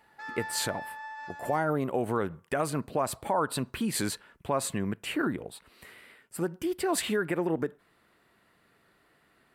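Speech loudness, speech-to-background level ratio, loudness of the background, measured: -31.0 LUFS, 9.5 dB, -40.5 LUFS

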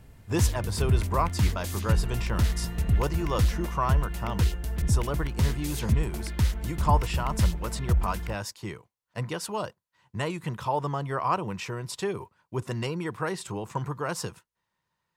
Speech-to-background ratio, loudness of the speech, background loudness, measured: -4.0 dB, -32.5 LUFS, -28.5 LUFS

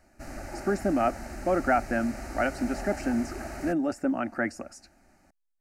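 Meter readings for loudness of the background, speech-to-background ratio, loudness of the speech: -39.5 LUFS, 10.5 dB, -29.0 LUFS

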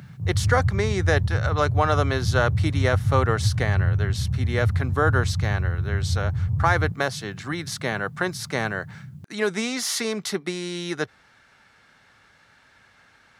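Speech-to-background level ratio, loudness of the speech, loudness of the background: -1.5 dB, -26.5 LUFS, -25.0 LUFS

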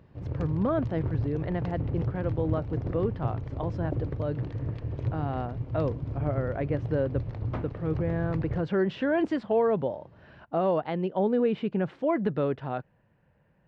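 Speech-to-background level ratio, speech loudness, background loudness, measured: 4.0 dB, -30.0 LUFS, -34.0 LUFS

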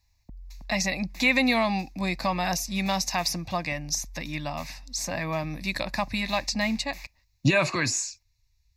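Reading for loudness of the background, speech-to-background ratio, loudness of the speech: -47.0 LUFS, 20.0 dB, -27.0 LUFS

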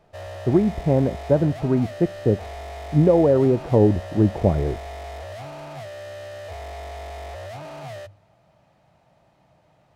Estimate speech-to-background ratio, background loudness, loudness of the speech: 15.5 dB, -36.0 LUFS, -20.5 LUFS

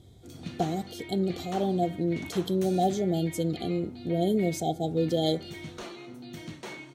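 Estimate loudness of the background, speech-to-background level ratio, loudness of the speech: -42.5 LUFS, 13.5 dB, -29.0 LUFS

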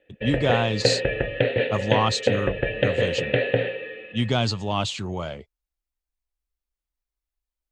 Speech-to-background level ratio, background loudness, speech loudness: -1.5 dB, -24.5 LUFS, -26.0 LUFS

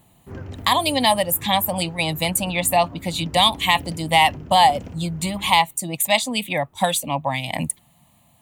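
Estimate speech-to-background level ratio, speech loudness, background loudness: 19.0 dB, -20.0 LUFS, -39.0 LUFS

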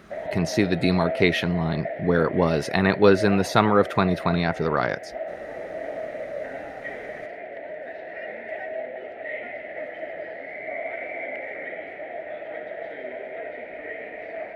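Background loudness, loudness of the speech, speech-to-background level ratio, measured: -34.0 LUFS, -22.0 LUFS, 12.0 dB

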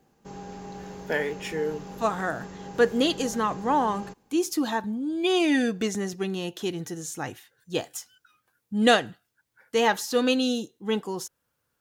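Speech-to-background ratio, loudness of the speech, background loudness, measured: 14.5 dB, -26.5 LUFS, -41.0 LUFS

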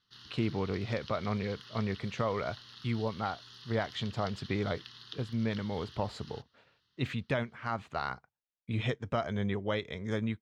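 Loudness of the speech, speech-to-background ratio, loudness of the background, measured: -35.0 LUFS, 14.5 dB, -49.5 LUFS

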